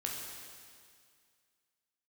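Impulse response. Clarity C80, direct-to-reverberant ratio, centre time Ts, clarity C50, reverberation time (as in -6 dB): 2.5 dB, -2.0 dB, 96 ms, 1.0 dB, 2.1 s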